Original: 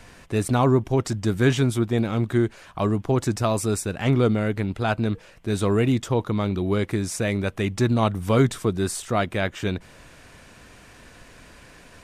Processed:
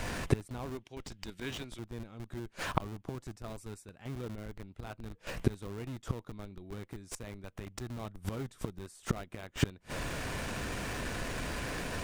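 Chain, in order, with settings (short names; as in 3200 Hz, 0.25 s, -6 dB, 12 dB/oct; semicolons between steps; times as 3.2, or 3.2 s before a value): 0.65–1.79 weighting filter D; flipped gate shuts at -21 dBFS, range -32 dB; in parallel at -4 dB: Schmitt trigger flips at -49.5 dBFS; on the sum: gain +7.5 dB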